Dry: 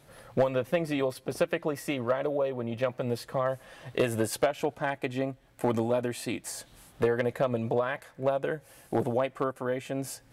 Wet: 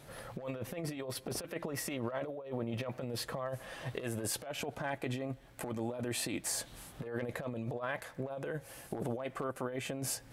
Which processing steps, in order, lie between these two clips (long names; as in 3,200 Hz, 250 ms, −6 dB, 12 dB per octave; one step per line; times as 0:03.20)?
brickwall limiter −27.5 dBFS, peak gain reduction 11.5 dB
compressor whose output falls as the input rises −38 dBFS, ratio −0.5
level +1 dB